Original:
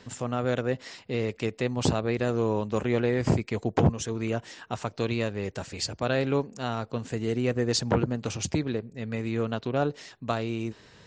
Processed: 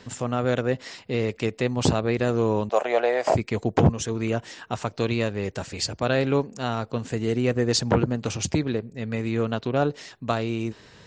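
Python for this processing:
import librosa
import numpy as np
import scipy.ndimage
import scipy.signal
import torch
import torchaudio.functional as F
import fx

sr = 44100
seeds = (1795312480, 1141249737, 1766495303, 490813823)

y = fx.highpass_res(x, sr, hz=660.0, q=4.9, at=(2.69, 3.35))
y = y * 10.0 ** (3.5 / 20.0)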